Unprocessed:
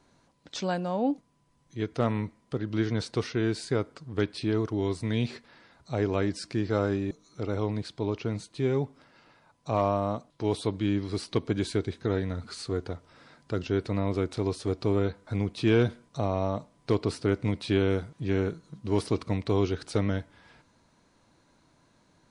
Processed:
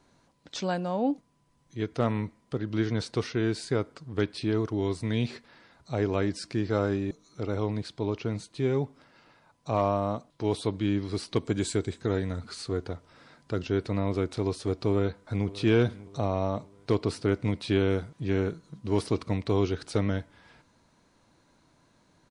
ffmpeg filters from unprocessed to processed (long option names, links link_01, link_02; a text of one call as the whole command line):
ffmpeg -i in.wav -filter_complex "[0:a]asettb=1/sr,asplit=3[link_01][link_02][link_03];[link_01]atrim=end=11.364[link_04];[link_02]atrim=start=11.36:end=12.39,asetpts=PTS-STARTPTS,afade=type=in:duration=0.004:curve=qsin,afade=type=out:start_time=1.026:duration=0.004:curve=qsin,equalizer=frequency=7700:width_type=o:width=0.33:gain=13.5[link_05];[link_03]atrim=start=12.386[link_06];[link_04][link_05]acrossfade=duration=0.004:curve1=hsin:curve2=qsin[link_07];[link_07][link_06]acrossfade=duration=0.004:curve1=qsin:curve2=hsin,asplit=2[link_08][link_09];[link_09]afade=type=in:start_time=14.88:duration=0.01,afade=type=out:start_time=15.53:duration=0.01,aecho=0:1:590|1180|1770|2360:0.125893|0.0566516|0.0254932|0.011472[link_10];[link_08][link_10]amix=inputs=2:normalize=0" out.wav